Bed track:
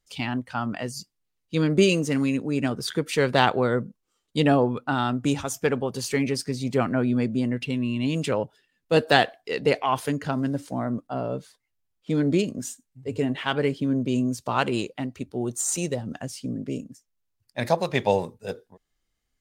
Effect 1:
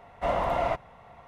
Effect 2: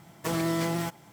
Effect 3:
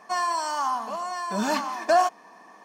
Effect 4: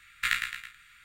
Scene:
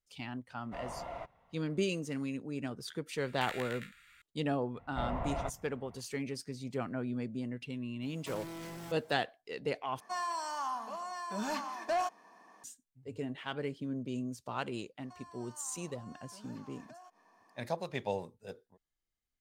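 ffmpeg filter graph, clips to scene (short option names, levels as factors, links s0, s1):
-filter_complex "[1:a]asplit=2[s0][s1];[3:a]asplit=2[s2][s3];[0:a]volume=0.211[s4];[4:a]acompressor=threshold=0.0251:ratio=6:attack=3.2:release=140:knee=1:detection=peak[s5];[s1]bass=f=250:g=10,treble=f=4000:g=-13[s6];[2:a]asoftclip=type=tanh:threshold=0.0251[s7];[s2]asoftclip=type=tanh:threshold=0.15[s8];[s3]acompressor=threshold=0.0141:ratio=6:attack=3.2:release=140:knee=1:detection=peak[s9];[s4]asplit=2[s10][s11];[s10]atrim=end=10.004[s12];[s8]atrim=end=2.64,asetpts=PTS-STARTPTS,volume=0.335[s13];[s11]atrim=start=12.636[s14];[s0]atrim=end=1.27,asetpts=PTS-STARTPTS,volume=0.158,afade=t=in:d=0.004:c=hsin,afade=t=out:st=1.266:d=0.004:c=hsin,adelay=500[s15];[s5]atrim=end=1.04,asetpts=PTS-STARTPTS,volume=0.562,afade=t=in:d=0.004:c=hsin,afade=t=out:st=1.036:d=0.004:c=hsin,adelay=3180[s16];[s6]atrim=end=1.27,asetpts=PTS-STARTPTS,volume=0.251,afade=t=in:d=0.004:c=hsin,afade=t=out:st=1.266:d=0.004:c=hsin,adelay=4740[s17];[s7]atrim=end=1.12,asetpts=PTS-STARTPTS,volume=0.335,afade=t=in:d=0.004:c=hsin,afade=t=out:st=1.116:d=0.004:c=hsin,adelay=353682S[s18];[s9]atrim=end=2.64,asetpts=PTS-STARTPTS,volume=0.158,afade=t=in:d=0.004:c=hsin,afade=t=out:st=2.636:d=0.004:c=hsin,adelay=15010[s19];[s12][s13]acrossfade=d=0.004:c1=hsin:c2=hsin[s20];[s20][s14]acrossfade=d=0.004:c1=hsin:c2=hsin[s21];[s21][s15][s16][s17][s18][s19]amix=inputs=6:normalize=0"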